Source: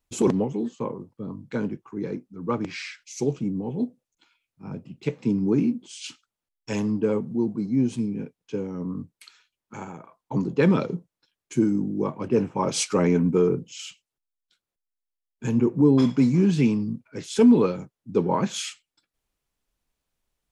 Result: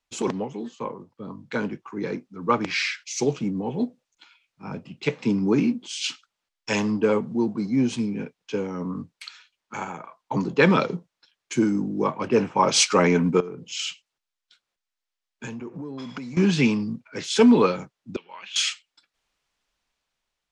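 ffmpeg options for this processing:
-filter_complex "[0:a]asettb=1/sr,asplit=3[a][b][c];[a]atrim=end=13.404[d];[b]atrim=start=13.4:end=16.37,asetpts=PTS-STARTPTS,afade=t=in:d=0.004:c=qsin,afade=t=out:st=2.966:d=0.004:c=qsin,acompressor=threshold=-32dB:ratio=12:attack=3.2:release=140:knee=1:detection=peak[e];[c]atrim=start=16.366[f];[d][e]acrossfade=d=0.004:c1=hsin:c2=qsin[g];[g][f]acrossfade=d=0.004:c1=qsin:c2=hsin,asettb=1/sr,asplit=3[h][i][j];[h]atrim=end=18.164[k];[i]atrim=start=18.16:end=18.56,asetpts=PTS-STARTPTS,afade=t=in:d=0.004:c=qsin,afade=t=out:st=0.396:d=0.004:c=qsin,bandpass=f=2.8k:t=q:w=5.6[l];[j]atrim=start=18.556[m];[k][l]acrossfade=d=0.004:c1=hsin:c2=qsin[n];[n][m]acrossfade=d=0.004:c1=qsin:c2=hsin,acrossover=split=200 7100:gain=0.224 1 0.126[o][p][q];[o][p][q]amix=inputs=3:normalize=0,dynaudnorm=f=530:g=5:m=7.5dB,equalizer=f=330:t=o:w=2:g=-9,volume=3.5dB"

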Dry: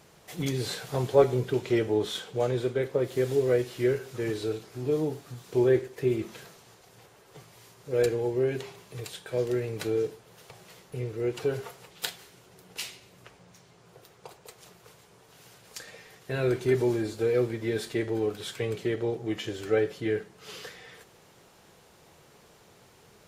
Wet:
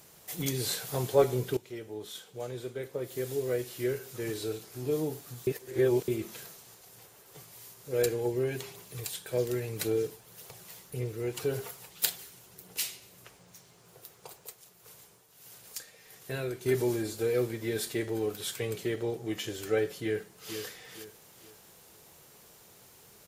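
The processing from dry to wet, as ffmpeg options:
-filter_complex "[0:a]asettb=1/sr,asplit=3[a][b][c];[a]atrim=end=8.254[d];[b]atrim=start=8.25:end=12.83,asetpts=PTS-STARTPTS,afade=t=in:d=0.004:c=qsin,afade=t=out:st=4.576:d=0.004:c=qsin,aphaser=in_gain=1:out_gain=1:delay=1.3:decay=0.26:speed=1.8:type=triangular[e];[c]atrim=start=12.826[f];[d][e]acrossfade=d=0.004:c1=hsin:c2=qsin[g];[g][f]acrossfade=d=0.004:c1=qsin:c2=hsin,asettb=1/sr,asplit=3[h][i][j];[h]atrim=end=14.374[k];[i]atrim=start=14.37:end=16.66,asetpts=PTS-STARTPTS,afade=t=in:d=0.004:c=qsin,afade=t=out:st=2.286:d=0.004:c=qsin,tremolo=f=1.6:d=0.59[l];[j]atrim=start=16.656[m];[k][l]acrossfade=d=0.004:c1=hsin:c2=qsin[n];[n][m]acrossfade=d=0.004:c1=qsin:c2=hsin,asplit=2[o][p];[p]afade=t=in:st=20.03:d=0.01,afade=t=out:st=20.58:d=0.01,aecho=0:1:460|920|1380|1840:0.354813|0.124185|0.0434646|0.0152126[q];[o][q]amix=inputs=2:normalize=0,asplit=4[r][s][t][u];[r]atrim=end=1.57,asetpts=PTS-STARTPTS,afade=t=out:st=1.566:d=0.004:c=hsin:silence=0.177828[v];[s]atrim=start=1.57:end=5.472,asetpts=PTS-STARTPTS,afade=t=in:d=3.29:silence=0.177828[w];[t]atrim=start=5.468:end=6.082,asetpts=PTS-STARTPTS,areverse[x];[u]atrim=start=6.078[y];[v][w]concat=n=2:v=0:a=1[z];[z][x]acrossfade=d=0.004:c1=hsin:c2=hsin[aa];[aa][y]acrossfade=d=0.004:c1=hsin:c2=hsin,aemphasis=mode=production:type=50fm,volume=-3dB"

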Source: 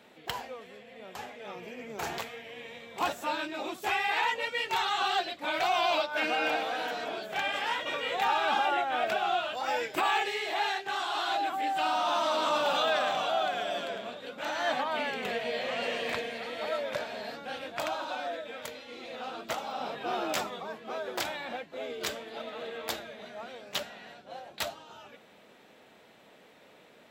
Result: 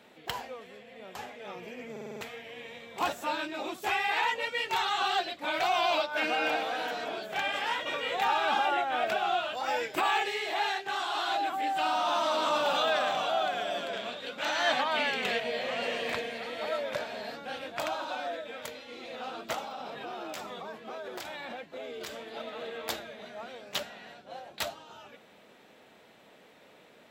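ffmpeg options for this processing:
-filter_complex "[0:a]asettb=1/sr,asplit=3[a][b][c];[a]atrim=end=13.934[d];[b]atrim=start=13.93:end=15.4,asetpts=PTS-STARTPTS,afade=t=in:d=0.004:c=qsin,afade=t=out:st=1.466:d=0.004:c=qsin,equalizer=f=3.8k:w=0.41:g=6.5[e];[c]atrim=start=15.396[f];[d][e]acrossfade=d=0.004:c1=hsin:c2=qsin[g];[g][f]acrossfade=d=0.004:c1=qsin:c2=hsin,asettb=1/sr,asplit=3[h][i][j];[h]atrim=end=19.644[k];[i]atrim=start=19.64:end=22.19,asetpts=PTS-STARTPTS,afade=t=in:d=0.004:c=qsin,afade=t=out:st=2.546:d=0.004:c=qsin,acompressor=threshold=-36dB:ratio=5:attack=3.2:release=140:knee=1:detection=peak[l];[j]atrim=start=22.186[m];[k][l]acrossfade=d=0.004:c1=hsin:c2=qsin[n];[n][m]acrossfade=d=0.004:c1=qsin:c2=hsin,asplit=7[o][p][q][r][s][t][u];[o]atrim=end=1.962[v];[p]atrim=start=1.908:end=1.962[w];[q]atrim=start=1.908:end=1.962[x];[r]atrim=start=1.908:end=1.962[y];[s]atrim=start=1.908:end=1.962[z];[t]atrim=start=1.908:end=1.962[aa];[u]atrim=start=2.208[ab];[v][w]acrossfade=d=0.004:c1=hsin:c2=hsin[ac];[ac][x]acrossfade=d=0.004:c1=hsin:c2=hsin[ad];[ad][y]acrossfade=d=0.004:c1=hsin:c2=hsin[ae];[ae][z]acrossfade=d=0.004:c1=hsin:c2=hsin[af];[af][aa]acrossfade=d=0.004:c1=hsin:c2=hsin[ag];[ag][ab]acrossfade=d=0.004:c1=hsin:c2=hsin"

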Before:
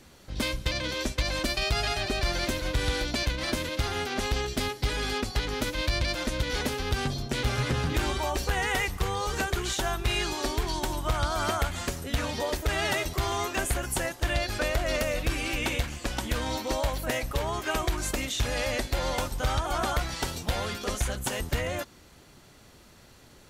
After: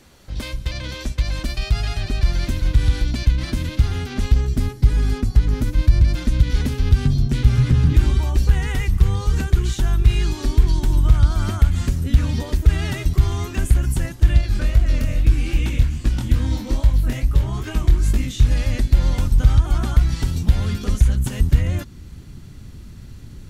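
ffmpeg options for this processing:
-filter_complex "[0:a]asettb=1/sr,asplit=3[a][b][c];[a]atrim=end=4.344[d];[b]atrim=start=4.34:end=6.15,asetpts=PTS-STARTPTS,afade=t=in:d=0.004:c=qsin,afade=t=out:st=1.806:d=0.004:c=qsin,equalizer=f=3.3k:w=0.85:g=-7[e];[c]atrim=start=6.146[f];[d][e]acrossfade=d=0.004:c1=hsin:c2=qsin[g];[g][f]acrossfade=d=0.004:c1=qsin:c2=hsin,asettb=1/sr,asplit=3[h][i][j];[h]atrim=end=14.414[k];[i]atrim=start=14.41:end=18.51,asetpts=PTS-STARTPTS,afade=t=in:d=0.004:c=qsin,afade=t=out:st=4.096:d=0.004:c=qsin,flanger=delay=18.5:depth=6.7:speed=2.4[l];[j]atrim=start=18.506[m];[k][l]acrossfade=d=0.004:c1=hsin:c2=qsin[n];[n][m]acrossfade=d=0.004:c1=qsin:c2=hsin,alimiter=limit=-24dB:level=0:latency=1:release=331,asubboost=boost=10:cutoff=190,volume=2.5dB"

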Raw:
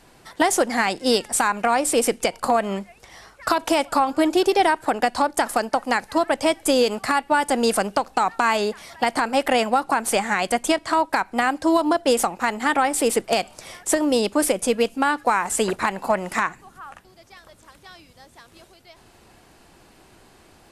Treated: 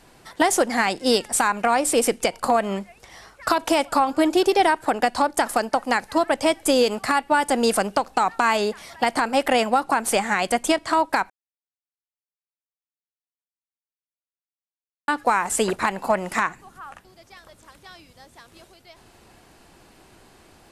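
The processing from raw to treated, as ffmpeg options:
-filter_complex "[0:a]asplit=3[a][b][c];[a]atrim=end=11.3,asetpts=PTS-STARTPTS,afade=t=out:st=11.296:d=0.004:c=hsin[d];[b]atrim=start=11.3:end=15.08,asetpts=PTS-STARTPTS,volume=0[e];[c]atrim=start=15.08,asetpts=PTS-STARTPTS,afade=t=in:d=0.004:c=hsin[f];[d][e][f]concat=n=3:v=0:a=1"

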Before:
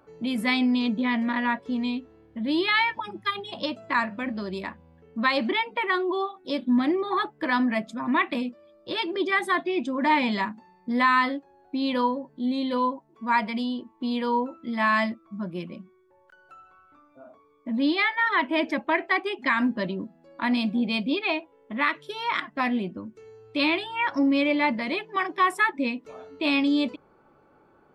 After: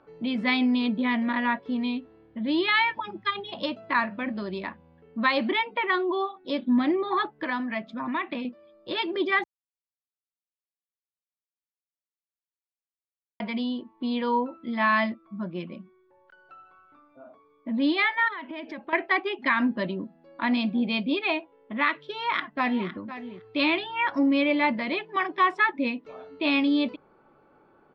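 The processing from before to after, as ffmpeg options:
-filter_complex "[0:a]asettb=1/sr,asplit=3[a][b][c];[a]atrim=end=7.314[d];[b]atrim=start=7.31:end=8.45,asetpts=PTS-STARTPTS,afade=t=in:d=0.004:c=qsin,afade=t=out:st=1.136:d=0.004:c=qsin,acrossover=split=940|4300[e][f][g];[e]acompressor=threshold=-30dB:ratio=4[h];[f]acompressor=threshold=-30dB:ratio=4[i];[g]acompressor=threshold=-56dB:ratio=4[j];[h][i][j]amix=inputs=3:normalize=0[k];[c]atrim=start=8.446[l];[d][k]acrossfade=d=0.004:c1=hsin:c2=qsin[m];[m][l]acrossfade=d=0.004:c1=qsin:c2=hsin,asettb=1/sr,asplit=3[n][o][p];[n]atrim=end=18.284[q];[o]atrim=start=18.28:end=18.93,asetpts=PTS-STARTPTS,afade=t=in:d=0.004:c=qsin,afade=t=out:st=0.646:d=0.004:c=qsin,acompressor=threshold=-33dB:ratio=8:attack=3.2:release=140:knee=1:detection=peak[r];[p]atrim=start=18.926[s];[q][r]acrossfade=d=0.004:c1=hsin:c2=qsin[t];[t][s]acrossfade=d=0.004:c1=qsin:c2=hsin,asplit=2[u][v];[v]afade=t=in:st=22.12:d=0.01,afade=t=out:st=22.88:d=0.01,aecho=0:1:510|1020:0.223872|0.0223872[w];[u][w]amix=inputs=2:normalize=0,asplit=3[x][y][z];[x]atrim=end=9.44,asetpts=PTS-STARTPTS,afade=t=out:st=9.436:d=0.004:c=hsin[aa];[y]atrim=start=9.44:end=13.4,asetpts=PTS-STARTPTS,volume=0[ab];[z]atrim=start=13.4,asetpts=PTS-STARTPTS,afade=t=in:d=0.004:c=hsin[ac];[aa][ab][ac]concat=n=3:v=0:a=1,lowpass=f=4.4k:w=0.5412,lowpass=f=4.4k:w=1.3066,equalizer=f=72:t=o:w=1.3:g=-5.5"

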